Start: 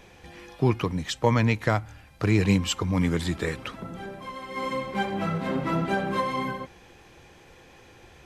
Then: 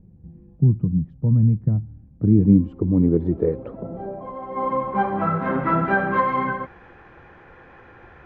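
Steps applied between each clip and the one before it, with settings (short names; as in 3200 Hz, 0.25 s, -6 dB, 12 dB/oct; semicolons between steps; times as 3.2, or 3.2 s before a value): low-pass sweep 170 Hz -> 1500 Hz, 1.65–5.59; gain +3.5 dB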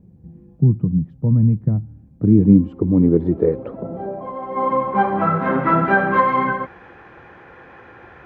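HPF 120 Hz 6 dB/oct; gain +4.5 dB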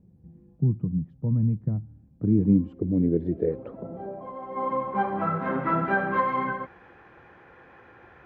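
spectral gain 2.73–3.5, 740–1500 Hz -11 dB; gain -8.5 dB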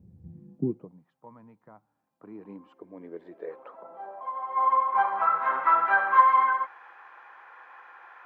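high-pass sweep 77 Hz -> 1000 Hz, 0.25–1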